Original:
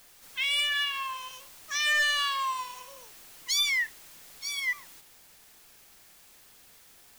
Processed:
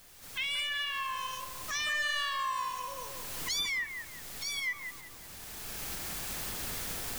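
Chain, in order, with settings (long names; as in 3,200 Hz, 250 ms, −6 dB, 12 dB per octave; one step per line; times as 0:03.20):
camcorder AGC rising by 16 dB per second
low-shelf EQ 210 Hz +9 dB
downward compressor, threshold −29 dBFS, peak gain reduction 7 dB
on a send: bucket-brigade delay 180 ms, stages 2,048, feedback 45%, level −4 dB
on the sum: level −1.5 dB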